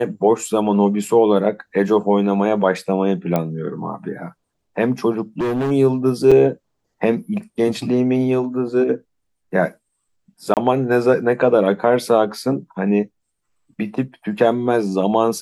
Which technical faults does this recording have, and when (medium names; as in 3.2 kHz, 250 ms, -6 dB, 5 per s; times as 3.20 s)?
3.36 s: pop -7 dBFS
5.40–5.72 s: clipped -17.5 dBFS
6.31–6.32 s: dropout 5.7 ms
10.54–10.57 s: dropout 28 ms